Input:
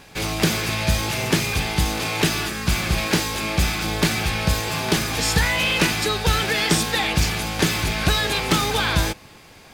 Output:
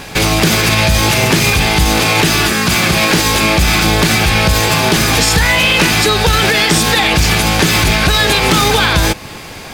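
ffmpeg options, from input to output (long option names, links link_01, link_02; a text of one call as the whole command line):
ffmpeg -i in.wav -filter_complex "[0:a]asettb=1/sr,asplit=3[link_01][link_02][link_03];[link_01]atrim=end=2.524[link_04];[link_02]atrim=start=2.52:end=3.11,asetpts=PTS-STARTPTS,afade=type=in:duration=0.004:curve=qsin,afade=type=out:start_time=0.586:duration=0.004:curve=qsin,highpass=120[link_05];[link_03]atrim=start=3.106[link_06];[link_04][link_05]acrossfade=duration=0.004:curve1=hsin:curve2=qsin[link_07];[link_07][link_06]acrossfade=duration=0.004:curve1=qsin:curve2=hsin,asplit=2[link_08][link_09];[link_09]acompressor=threshold=-30dB:ratio=6,volume=-2.5dB[link_10];[link_08][link_10]amix=inputs=2:normalize=0,alimiter=level_in=13dB:limit=-1dB:release=50:level=0:latency=1,volume=-1dB" out.wav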